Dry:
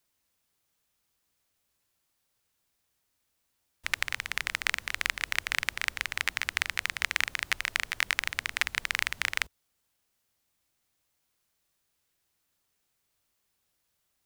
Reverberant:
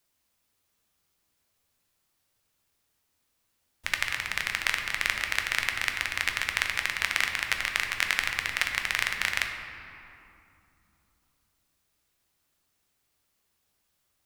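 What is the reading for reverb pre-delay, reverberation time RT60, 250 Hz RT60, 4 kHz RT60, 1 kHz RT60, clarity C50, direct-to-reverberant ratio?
9 ms, 2.7 s, 4.0 s, 1.6 s, 2.7 s, 5.0 dB, 3.0 dB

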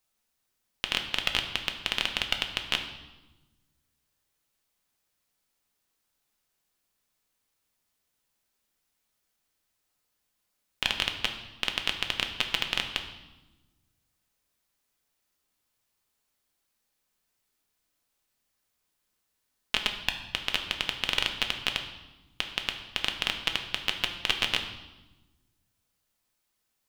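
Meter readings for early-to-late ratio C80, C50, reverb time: 10.5 dB, 8.5 dB, 1.1 s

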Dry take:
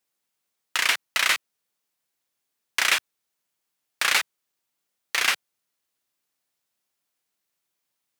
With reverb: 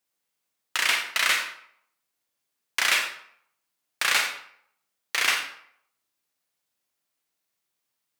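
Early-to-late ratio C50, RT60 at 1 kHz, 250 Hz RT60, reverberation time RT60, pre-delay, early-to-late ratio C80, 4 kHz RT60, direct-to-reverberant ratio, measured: 5.5 dB, 0.65 s, 0.55 s, 0.65 s, 36 ms, 8.5 dB, 0.45 s, 3.0 dB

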